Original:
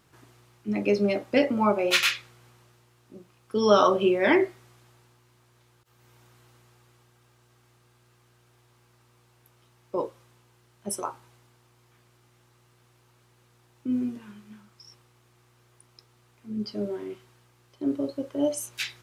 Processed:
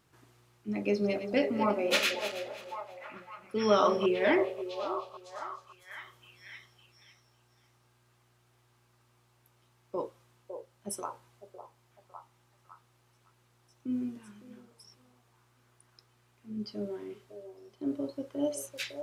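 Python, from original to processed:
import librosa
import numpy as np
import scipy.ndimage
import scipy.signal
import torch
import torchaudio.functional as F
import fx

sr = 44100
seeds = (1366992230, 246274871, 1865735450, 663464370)

y = fx.reverse_delay_fb(x, sr, ms=164, feedback_pct=51, wet_db=-10.0, at=(0.68, 4.06))
y = fx.echo_stepped(y, sr, ms=555, hz=570.0, octaves=0.7, feedback_pct=70, wet_db=-5.5)
y = y * 10.0 ** (-6.0 / 20.0)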